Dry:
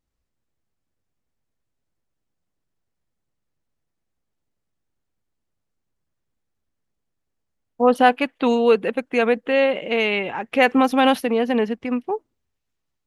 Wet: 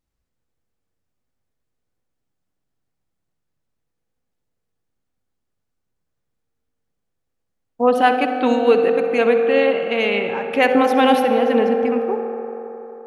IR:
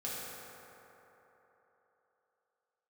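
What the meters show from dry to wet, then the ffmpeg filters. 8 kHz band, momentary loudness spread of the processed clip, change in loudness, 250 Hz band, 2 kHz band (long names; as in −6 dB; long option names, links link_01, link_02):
can't be measured, 10 LU, +2.5 dB, +1.0 dB, +1.0 dB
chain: -filter_complex "[0:a]asplit=2[link_01][link_02];[1:a]atrim=start_sample=2205,highshelf=frequency=5900:gain=-8.5,adelay=63[link_03];[link_02][link_03]afir=irnorm=-1:irlink=0,volume=-7dB[link_04];[link_01][link_04]amix=inputs=2:normalize=0"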